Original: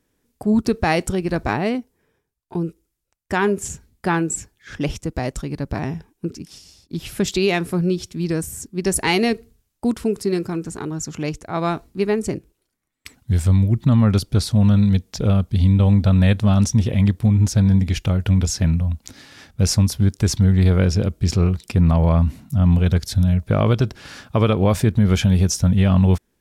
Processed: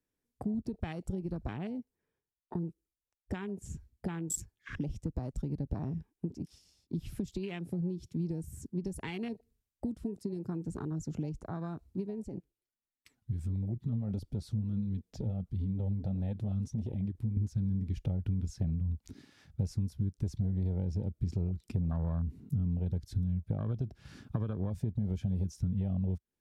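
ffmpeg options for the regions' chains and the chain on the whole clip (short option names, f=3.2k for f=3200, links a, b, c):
-filter_complex "[0:a]asettb=1/sr,asplit=3[a][b][c];[a]atrim=end=12.244[d];[b]atrim=start=12.24:end=17.37,asetpts=PTS-STARTPTS,afade=t=in:d=0.004:c=qsin,afade=t=out:st=5.126:d=0.004:c=qsin,acompressor=threshold=-25dB:ratio=2.5:attack=3.2:release=140:knee=1:detection=peak,flanger=delay=2.3:depth=7.4:regen=49:speed=1.5:shape=triangular[e];[c]atrim=start=17.366[f];[d][e]acrossfade=d=0.004:c1=hsin:c2=qsin[g];[g][f]acrossfade=d=0.004:c1=qsin:c2=hsin,acompressor=threshold=-26dB:ratio=12,afwtdn=0.0178,acrossover=split=250|3000[h][i][j];[i]acompressor=threshold=-40dB:ratio=6[k];[h][k][j]amix=inputs=3:normalize=0,volume=-2.5dB"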